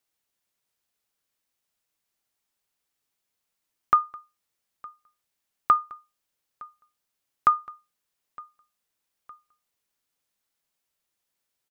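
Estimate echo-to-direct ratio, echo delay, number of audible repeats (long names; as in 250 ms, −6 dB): −22.5 dB, 912 ms, 2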